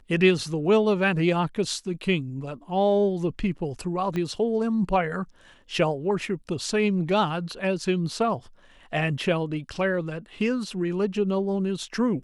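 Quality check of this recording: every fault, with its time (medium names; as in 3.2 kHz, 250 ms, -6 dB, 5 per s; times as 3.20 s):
4.16 s: pop -18 dBFS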